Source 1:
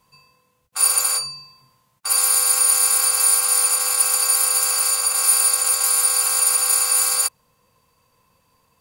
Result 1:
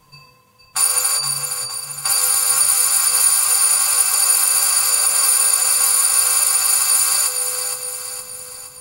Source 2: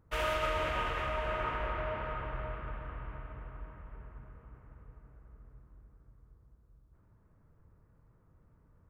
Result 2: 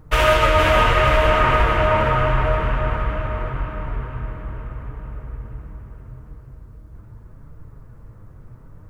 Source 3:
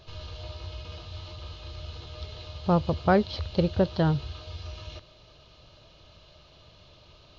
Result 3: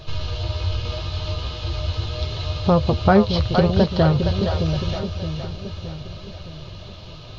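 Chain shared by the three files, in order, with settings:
bass shelf 110 Hz +7 dB; compression 2:1, threshold -27 dBFS; flange 0.79 Hz, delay 6.3 ms, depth 3.7 ms, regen +43%; on a send: two-band feedback delay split 470 Hz, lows 618 ms, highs 466 ms, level -6 dB; on the sum: peak normalisation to -3 dBFS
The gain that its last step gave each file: +12.0 dB, +20.5 dB, +15.0 dB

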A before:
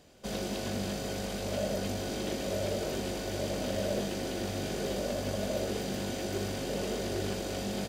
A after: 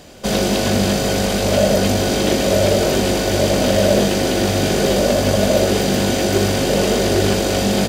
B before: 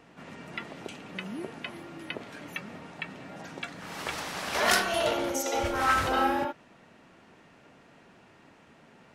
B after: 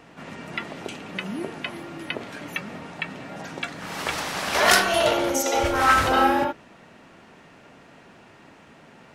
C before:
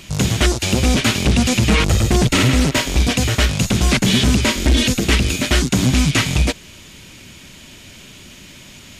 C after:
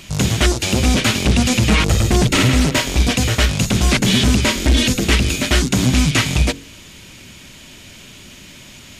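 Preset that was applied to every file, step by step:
de-hum 45.95 Hz, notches 11; peak normalisation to -3 dBFS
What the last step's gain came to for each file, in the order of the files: +18.0 dB, +7.0 dB, +0.5 dB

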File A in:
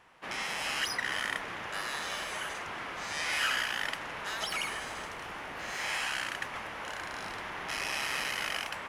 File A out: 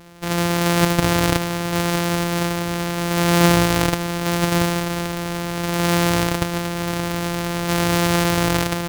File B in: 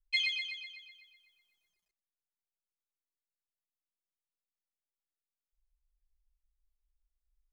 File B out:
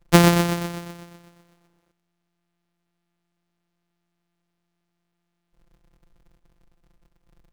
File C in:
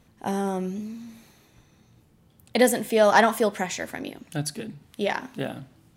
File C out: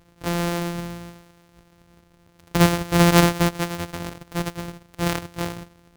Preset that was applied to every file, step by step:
sorted samples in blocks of 256 samples; peak normalisation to -1.5 dBFS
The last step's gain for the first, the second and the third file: +16.0 dB, +17.5 dB, +2.5 dB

